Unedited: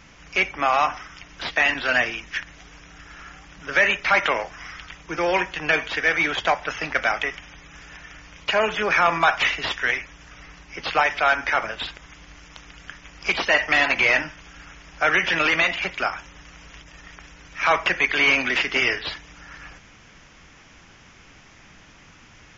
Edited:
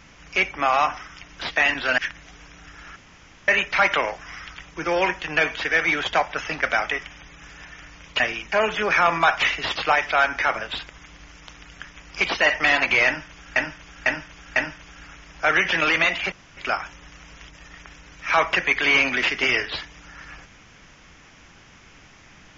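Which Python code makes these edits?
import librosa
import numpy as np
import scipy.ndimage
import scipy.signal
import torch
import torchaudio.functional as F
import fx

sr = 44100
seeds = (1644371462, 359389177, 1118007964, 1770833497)

y = fx.edit(x, sr, fx.move(start_s=1.98, length_s=0.32, to_s=8.52),
    fx.room_tone_fill(start_s=3.28, length_s=0.52),
    fx.cut(start_s=9.75, length_s=1.08),
    fx.repeat(start_s=14.14, length_s=0.5, count=4),
    fx.insert_room_tone(at_s=15.9, length_s=0.25), tone=tone)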